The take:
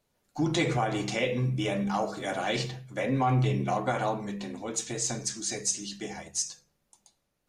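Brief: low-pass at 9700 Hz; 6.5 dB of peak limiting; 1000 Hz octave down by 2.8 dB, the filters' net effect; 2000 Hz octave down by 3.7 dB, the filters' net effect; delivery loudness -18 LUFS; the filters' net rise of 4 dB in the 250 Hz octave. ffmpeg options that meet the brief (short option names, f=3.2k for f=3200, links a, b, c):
-af "lowpass=9.7k,equalizer=f=250:t=o:g=5.5,equalizer=f=1k:t=o:g=-4,equalizer=f=2k:t=o:g=-3.5,volume=12.5dB,alimiter=limit=-7.5dB:level=0:latency=1"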